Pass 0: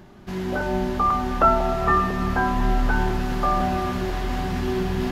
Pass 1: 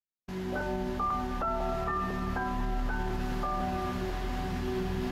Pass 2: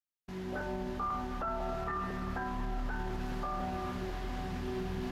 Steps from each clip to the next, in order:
gate -35 dBFS, range -58 dB; limiter -15.5 dBFS, peak gain reduction 9.5 dB; gain -7.5 dB
Doppler distortion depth 0.18 ms; gain -4.5 dB

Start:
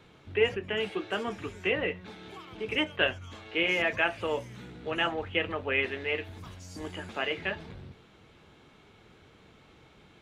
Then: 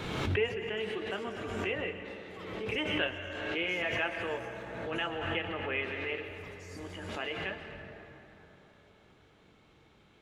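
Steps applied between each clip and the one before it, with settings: plate-style reverb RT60 3.9 s, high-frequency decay 0.45×, pre-delay 0.105 s, DRR 6 dB; backwards sustainer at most 33 dB/s; gain -6.5 dB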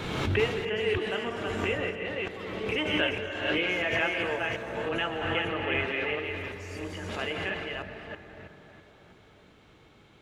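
reverse delay 0.326 s, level -3.5 dB; gain +3.5 dB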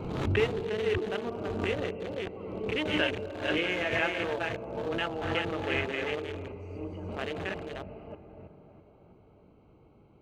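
Wiener smoothing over 25 samples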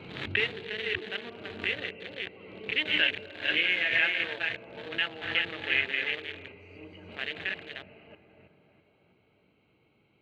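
HPF 97 Hz; band shelf 2600 Hz +15.5 dB; gain -9 dB

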